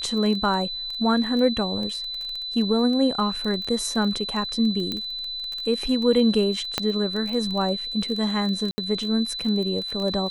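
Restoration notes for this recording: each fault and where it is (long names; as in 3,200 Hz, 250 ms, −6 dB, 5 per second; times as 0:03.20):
surface crackle 16 per second −28 dBFS
whistle 4,000 Hz −29 dBFS
0:04.92: click −14 dBFS
0:06.78: click −7 dBFS
0:08.71–0:08.78: drop-out 70 ms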